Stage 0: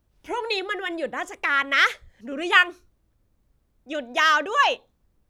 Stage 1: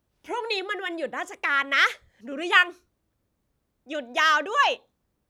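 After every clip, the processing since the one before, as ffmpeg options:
-af "highpass=f=140:p=1,volume=0.841"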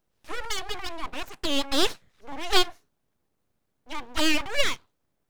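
-af "aeval=exprs='abs(val(0))':c=same"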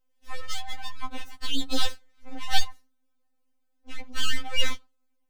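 -af "afftfilt=real='re*3.46*eq(mod(b,12),0)':imag='im*3.46*eq(mod(b,12),0)':win_size=2048:overlap=0.75,volume=0.841"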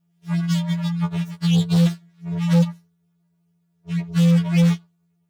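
-af "aeval=exprs='val(0)*sin(2*PI*170*n/s)':c=same,acontrast=40,volume=3.98,asoftclip=hard,volume=0.251"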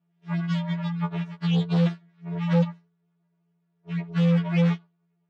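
-af "highpass=210,lowpass=2500"

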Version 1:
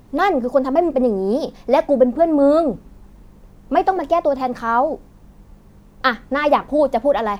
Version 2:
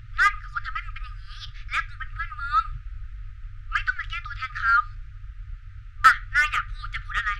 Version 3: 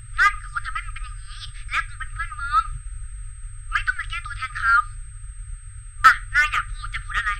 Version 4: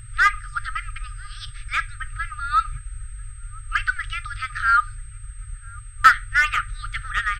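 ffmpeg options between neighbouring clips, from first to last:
-filter_complex "[0:a]lowpass=2600,afftfilt=real='re*(1-between(b*sr/4096,130,1200))':imag='im*(1-between(b*sr/4096,130,1200))':win_size=4096:overlap=0.75,acrossover=split=430|1400[s0][s1][s2];[s2]asoftclip=type=tanh:threshold=0.0447[s3];[s0][s1][s3]amix=inputs=3:normalize=0,volume=2.51"
-af "aeval=exprs='val(0)+0.00316*sin(2*PI*8300*n/s)':c=same,volume=1.33"
-filter_complex "[0:a]asplit=2[s0][s1];[s1]adelay=991.3,volume=0.0562,highshelf=f=4000:g=-22.3[s2];[s0][s2]amix=inputs=2:normalize=0"

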